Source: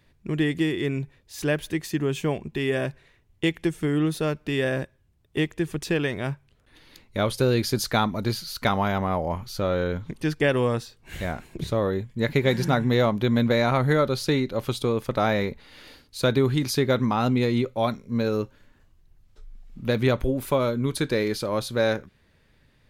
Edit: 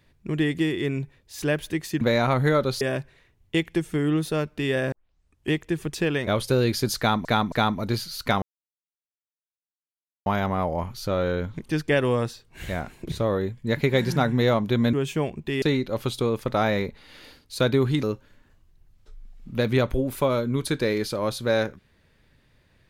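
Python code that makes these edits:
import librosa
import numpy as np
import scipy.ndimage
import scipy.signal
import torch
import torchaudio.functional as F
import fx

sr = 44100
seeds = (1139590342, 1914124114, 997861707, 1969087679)

y = fx.edit(x, sr, fx.swap(start_s=2.01, length_s=0.69, other_s=13.45, other_length_s=0.8),
    fx.tape_start(start_s=4.81, length_s=0.6),
    fx.cut(start_s=6.16, length_s=1.01),
    fx.repeat(start_s=7.88, length_s=0.27, count=3),
    fx.insert_silence(at_s=8.78, length_s=1.84),
    fx.cut(start_s=16.66, length_s=1.67), tone=tone)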